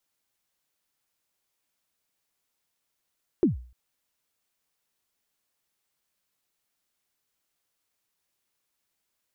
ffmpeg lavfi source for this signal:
ffmpeg -f lavfi -i "aevalsrc='0.2*pow(10,-3*t/0.43)*sin(2*PI*(400*0.136/log(61/400)*(exp(log(61/400)*min(t,0.136)/0.136)-1)+61*max(t-0.136,0)))':duration=0.3:sample_rate=44100" out.wav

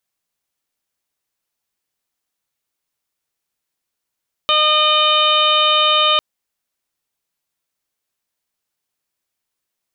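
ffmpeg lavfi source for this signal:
ffmpeg -f lavfi -i "aevalsrc='0.0891*sin(2*PI*610*t)+0.158*sin(2*PI*1220*t)+0.0211*sin(2*PI*1830*t)+0.0708*sin(2*PI*2440*t)+0.158*sin(2*PI*3050*t)+0.126*sin(2*PI*3660*t)+0.0141*sin(2*PI*4270*t)':duration=1.7:sample_rate=44100" out.wav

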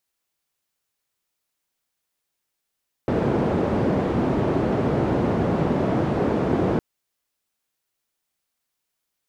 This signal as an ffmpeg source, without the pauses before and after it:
ffmpeg -f lavfi -i "anoisesrc=color=white:duration=3.71:sample_rate=44100:seed=1,highpass=frequency=92,lowpass=frequency=410,volume=1.2dB" out.wav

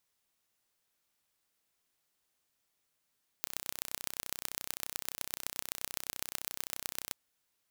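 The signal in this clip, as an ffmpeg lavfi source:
ffmpeg -f lavfi -i "aevalsrc='0.473*eq(mod(n,1396),0)*(0.5+0.5*eq(mod(n,5584),0))':duration=3.69:sample_rate=44100" out.wav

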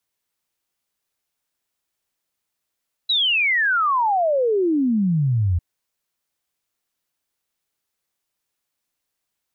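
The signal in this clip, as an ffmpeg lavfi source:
ffmpeg -f lavfi -i "aevalsrc='0.158*clip(min(t,2.5-t)/0.01,0,1)*sin(2*PI*4000*2.5/log(82/4000)*(exp(log(82/4000)*t/2.5)-1))':duration=2.5:sample_rate=44100" out.wav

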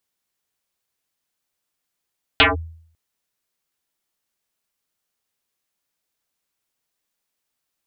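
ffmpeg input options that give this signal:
ffmpeg -f lavfi -i "aevalsrc='0.447*pow(10,-3*t/0.61)*sin(2*PI*81.5*t+10*clip(1-t/0.16,0,1)*sin(2*PI*4.49*81.5*t))':duration=0.55:sample_rate=44100" out.wav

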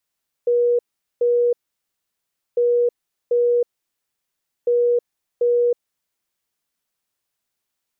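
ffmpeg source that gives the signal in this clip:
ffmpeg -f lavfi -i "aevalsrc='0.2*sin(2*PI*481*t)*clip(min(mod(mod(t,2.1),0.74),0.32-mod(mod(t,2.1),0.74))/0.005,0,1)*lt(mod(t,2.1),1.48)':duration=6.3:sample_rate=44100" out.wav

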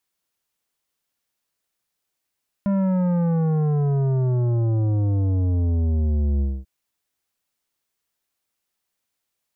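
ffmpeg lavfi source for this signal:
ffmpeg -f lavfi -i "aevalsrc='0.112*clip((3.99-t)/0.24,0,1)*tanh(3.55*sin(2*PI*200*3.99/log(65/200)*(exp(log(65/200)*t/3.99)-1)))/tanh(3.55)':duration=3.99:sample_rate=44100" out.wav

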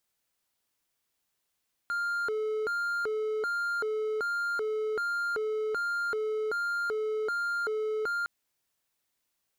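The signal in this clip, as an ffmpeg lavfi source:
ffmpeg -f lavfi -i "aevalsrc='0.0501*(1-4*abs(mod((916*t+484/1.3*(0.5-abs(mod(1.3*t,1)-0.5)))+0.25,1)-0.5))':duration=6.36:sample_rate=44100" out.wav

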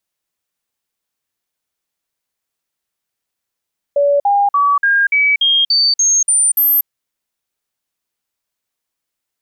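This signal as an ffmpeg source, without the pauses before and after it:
ffmpeg -f lavfi -i "aevalsrc='0.335*clip(min(mod(t,0.29),0.24-mod(t,0.29))/0.005,0,1)*sin(2*PI*571*pow(2,floor(t/0.29)/2)*mod(t,0.29))':duration=2.9:sample_rate=44100" out.wav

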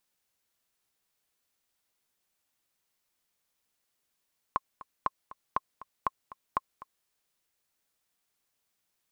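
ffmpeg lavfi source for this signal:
ffmpeg -f lavfi -i "aevalsrc='pow(10,(-13-18*gte(mod(t,2*60/239),60/239))/20)*sin(2*PI*1070*mod(t,60/239))*exp(-6.91*mod(t,60/239)/0.03)':duration=2.51:sample_rate=44100" out.wav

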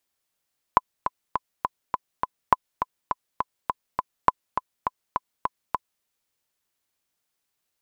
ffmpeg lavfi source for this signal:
ffmpeg -f lavfi -i "aevalsrc='pow(10,(-1.5-8.5*gte(mod(t,6*60/205),60/205))/20)*sin(2*PI*1010*mod(t,60/205))*exp(-6.91*mod(t,60/205)/0.03)':duration=5.26:sample_rate=44100" out.wav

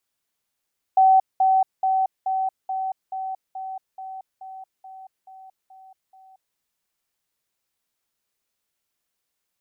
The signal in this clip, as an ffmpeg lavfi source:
ffmpeg -f lavfi -i "aevalsrc='pow(10,(-11.5-3*floor(t/0.43))/20)*sin(2*PI*762*t)*clip(min(mod(t,0.43),0.23-mod(t,0.43))/0.005,0,1)':duration=5.59:sample_rate=44100" out.wav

